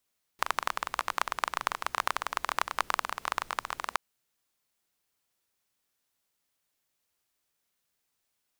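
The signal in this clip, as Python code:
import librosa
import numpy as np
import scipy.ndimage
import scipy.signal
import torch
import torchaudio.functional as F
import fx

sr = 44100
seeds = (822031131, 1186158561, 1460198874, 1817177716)

y = fx.rain(sr, seeds[0], length_s=3.57, drops_per_s=20.0, hz=1100.0, bed_db=-21.5)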